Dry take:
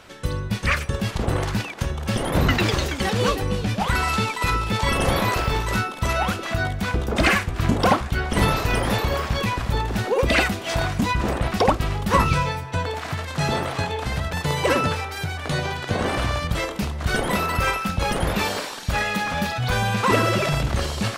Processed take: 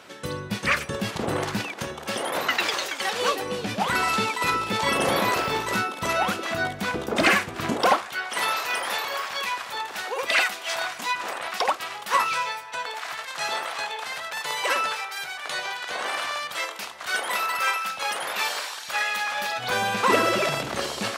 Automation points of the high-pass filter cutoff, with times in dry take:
0:01.71 190 Hz
0:02.45 670 Hz
0:03.11 670 Hz
0:03.72 230 Hz
0:07.59 230 Hz
0:08.19 880 Hz
0:19.33 880 Hz
0:19.76 290 Hz

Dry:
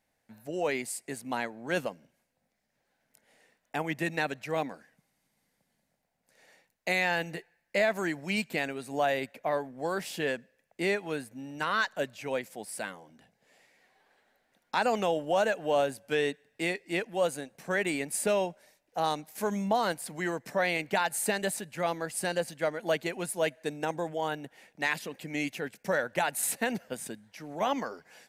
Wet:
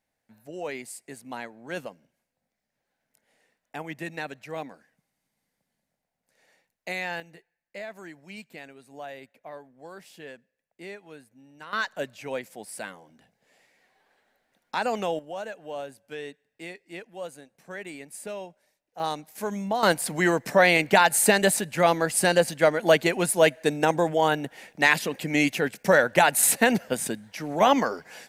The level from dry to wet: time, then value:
−4 dB
from 0:07.20 −12 dB
from 0:11.73 0 dB
from 0:15.19 −9 dB
from 0:19.00 0 dB
from 0:19.83 +10 dB

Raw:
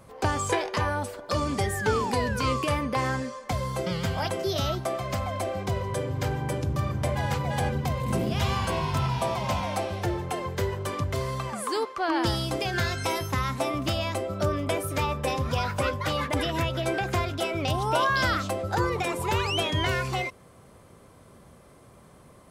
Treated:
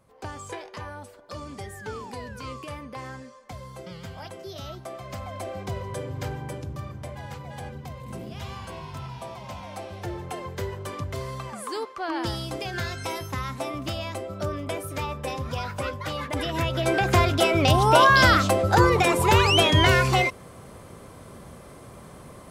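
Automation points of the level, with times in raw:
0:04.57 −11 dB
0:05.57 −3.5 dB
0:06.25 −3.5 dB
0:07.13 −10.5 dB
0:09.55 −10.5 dB
0:10.25 −3.5 dB
0:16.22 −3.5 dB
0:17.23 +8 dB

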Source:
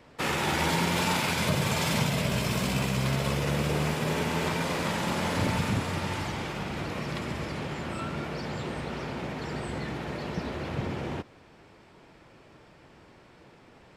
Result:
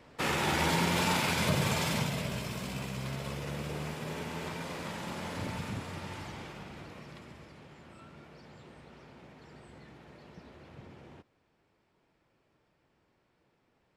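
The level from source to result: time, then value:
0:01.66 −2 dB
0:02.55 −10 dB
0:06.41 −10 dB
0:07.55 −18.5 dB

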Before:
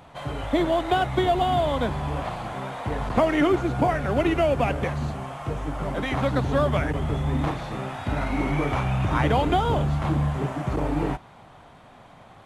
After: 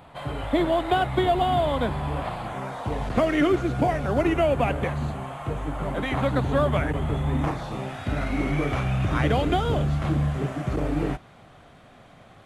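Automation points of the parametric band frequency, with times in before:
parametric band −9 dB 0.4 octaves
0:02.45 6,000 Hz
0:03.16 890 Hz
0:03.78 890 Hz
0:04.43 5,400 Hz
0:07.35 5,400 Hz
0:07.96 920 Hz

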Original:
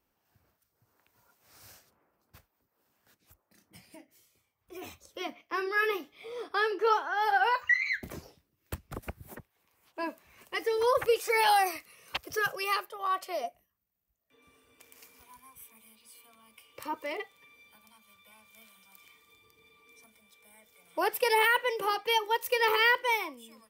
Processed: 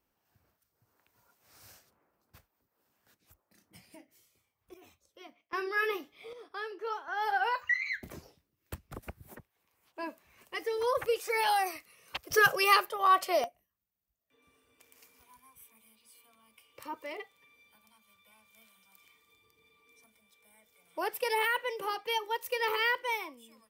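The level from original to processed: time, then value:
−2 dB
from 0:04.74 −14.5 dB
from 0:05.53 −2.5 dB
from 0:06.33 −11 dB
from 0:07.08 −4 dB
from 0:12.31 +6.5 dB
from 0:13.44 −5 dB

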